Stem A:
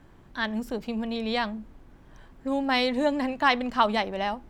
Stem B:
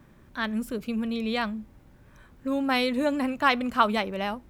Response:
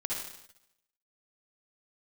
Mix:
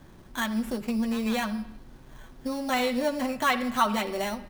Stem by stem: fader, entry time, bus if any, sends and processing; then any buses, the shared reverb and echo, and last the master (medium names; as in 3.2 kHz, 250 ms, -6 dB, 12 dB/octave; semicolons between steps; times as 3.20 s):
+2.0 dB, 0.00 s, no send, compression, threshold -31 dBFS, peak gain reduction 14.5 dB; sample-rate reducer 5 kHz, jitter 0%
-6.5 dB, 7.9 ms, send -12.5 dB, comb 5.4 ms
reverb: on, RT60 0.85 s, pre-delay 50 ms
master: none